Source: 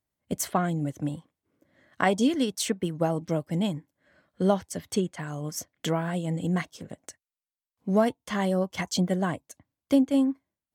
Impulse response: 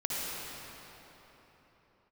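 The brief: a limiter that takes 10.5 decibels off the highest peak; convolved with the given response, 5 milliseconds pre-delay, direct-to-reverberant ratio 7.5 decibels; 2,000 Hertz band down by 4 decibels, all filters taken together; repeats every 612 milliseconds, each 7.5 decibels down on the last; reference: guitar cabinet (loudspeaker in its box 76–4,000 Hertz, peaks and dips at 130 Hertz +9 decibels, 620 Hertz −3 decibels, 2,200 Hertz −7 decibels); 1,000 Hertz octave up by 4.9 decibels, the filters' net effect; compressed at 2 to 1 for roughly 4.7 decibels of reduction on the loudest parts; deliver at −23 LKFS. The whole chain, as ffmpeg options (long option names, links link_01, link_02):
-filter_complex "[0:a]equalizer=frequency=1000:width_type=o:gain=9,equalizer=frequency=2000:width_type=o:gain=-6.5,acompressor=threshold=-23dB:ratio=2,alimiter=limit=-18dB:level=0:latency=1,aecho=1:1:612|1224|1836|2448|3060:0.422|0.177|0.0744|0.0312|0.0131,asplit=2[link_01][link_02];[1:a]atrim=start_sample=2205,adelay=5[link_03];[link_02][link_03]afir=irnorm=-1:irlink=0,volume=-14.5dB[link_04];[link_01][link_04]amix=inputs=2:normalize=0,highpass=76,equalizer=frequency=130:width_type=q:width=4:gain=9,equalizer=frequency=620:width_type=q:width=4:gain=-3,equalizer=frequency=2200:width_type=q:width=4:gain=-7,lowpass=frequency=4000:width=0.5412,lowpass=frequency=4000:width=1.3066,volume=6.5dB"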